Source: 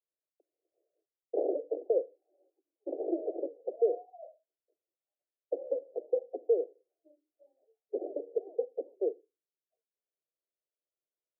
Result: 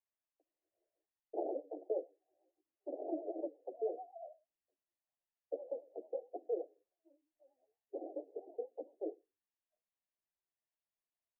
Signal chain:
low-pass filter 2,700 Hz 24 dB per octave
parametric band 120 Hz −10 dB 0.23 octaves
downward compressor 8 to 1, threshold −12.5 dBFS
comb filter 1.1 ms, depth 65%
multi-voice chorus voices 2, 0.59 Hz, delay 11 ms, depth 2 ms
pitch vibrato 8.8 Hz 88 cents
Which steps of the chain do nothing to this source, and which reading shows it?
low-pass filter 2,700 Hz: nothing at its input above 760 Hz
parametric band 120 Hz: nothing at its input below 270 Hz
downward compressor, threshold −12.5 dBFS: peak of its input −17.5 dBFS

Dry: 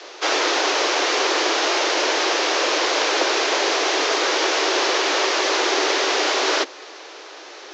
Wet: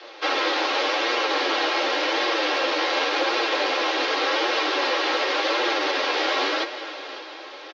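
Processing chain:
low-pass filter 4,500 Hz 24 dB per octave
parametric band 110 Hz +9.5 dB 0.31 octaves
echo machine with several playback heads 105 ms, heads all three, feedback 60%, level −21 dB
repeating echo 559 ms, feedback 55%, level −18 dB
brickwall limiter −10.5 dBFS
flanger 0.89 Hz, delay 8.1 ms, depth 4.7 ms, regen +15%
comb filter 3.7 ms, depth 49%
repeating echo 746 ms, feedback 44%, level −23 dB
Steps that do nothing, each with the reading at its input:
parametric band 110 Hz: nothing at its input below 240 Hz

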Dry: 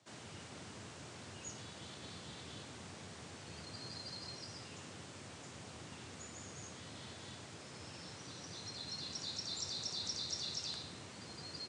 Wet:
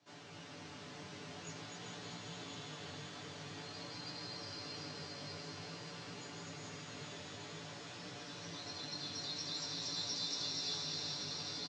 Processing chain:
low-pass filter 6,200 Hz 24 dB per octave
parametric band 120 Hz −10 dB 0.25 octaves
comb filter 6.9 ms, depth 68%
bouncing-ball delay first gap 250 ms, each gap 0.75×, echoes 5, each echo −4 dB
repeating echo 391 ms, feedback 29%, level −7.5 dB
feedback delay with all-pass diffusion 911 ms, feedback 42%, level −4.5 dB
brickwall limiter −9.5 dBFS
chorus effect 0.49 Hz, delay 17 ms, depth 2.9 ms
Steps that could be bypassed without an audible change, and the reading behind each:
brickwall limiter −9.5 dBFS: peak of its input −24.5 dBFS

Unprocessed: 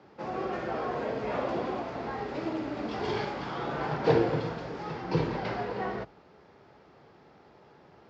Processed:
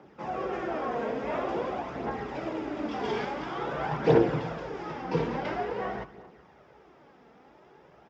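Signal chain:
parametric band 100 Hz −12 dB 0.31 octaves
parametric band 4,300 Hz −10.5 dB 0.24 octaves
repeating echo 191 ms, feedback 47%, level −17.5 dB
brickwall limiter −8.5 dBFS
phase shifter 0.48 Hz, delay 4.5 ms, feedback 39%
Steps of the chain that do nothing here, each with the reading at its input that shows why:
brickwall limiter −8.5 dBFS: peak of its input −12.0 dBFS

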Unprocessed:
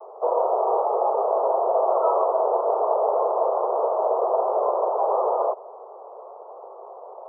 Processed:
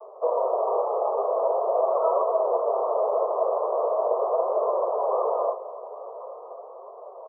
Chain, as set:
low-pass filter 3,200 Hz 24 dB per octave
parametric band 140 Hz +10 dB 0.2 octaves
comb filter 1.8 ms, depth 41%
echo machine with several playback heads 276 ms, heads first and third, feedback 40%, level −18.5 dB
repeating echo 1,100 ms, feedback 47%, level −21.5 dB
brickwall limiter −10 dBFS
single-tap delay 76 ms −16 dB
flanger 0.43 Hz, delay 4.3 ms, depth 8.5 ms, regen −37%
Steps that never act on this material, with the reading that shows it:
low-pass filter 3,200 Hz: nothing at its input above 1,400 Hz
parametric band 140 Hz: nothing at its input below 320 Hz

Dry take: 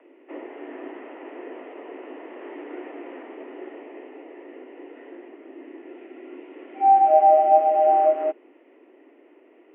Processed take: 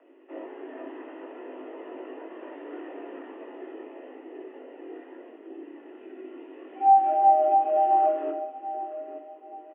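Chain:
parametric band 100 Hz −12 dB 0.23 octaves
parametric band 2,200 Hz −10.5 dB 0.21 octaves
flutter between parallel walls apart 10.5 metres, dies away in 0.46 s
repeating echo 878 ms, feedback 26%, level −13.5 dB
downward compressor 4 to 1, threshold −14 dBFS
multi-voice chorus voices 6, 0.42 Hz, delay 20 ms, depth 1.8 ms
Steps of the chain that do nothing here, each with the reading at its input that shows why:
parametric band 100 Hz: nothing at its input below 250 Hz

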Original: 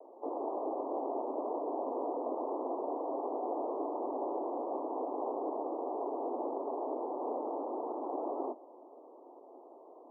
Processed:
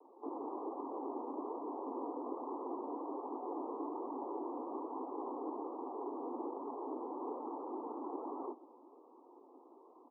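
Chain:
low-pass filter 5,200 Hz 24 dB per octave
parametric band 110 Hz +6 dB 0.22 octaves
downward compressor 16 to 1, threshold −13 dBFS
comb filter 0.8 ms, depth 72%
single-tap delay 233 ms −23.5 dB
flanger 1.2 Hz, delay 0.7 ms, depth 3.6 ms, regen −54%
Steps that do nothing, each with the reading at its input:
low-pass filter 5,200 Hz: nothing at its input above 1,300 Hz
parametric band 110 Hz: nothing at its input below 200 Hz
downward compressor, threshold −13 dBFS: peak of its input −23.0 dBFS

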